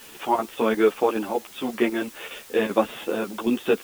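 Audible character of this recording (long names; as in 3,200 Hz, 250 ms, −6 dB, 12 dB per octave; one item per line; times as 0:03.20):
chopped level 5.2 Hz, depth 60%, duty 80%
a quantiser's noise floor 8 bits, dither triangular
a shimmering, thickened sound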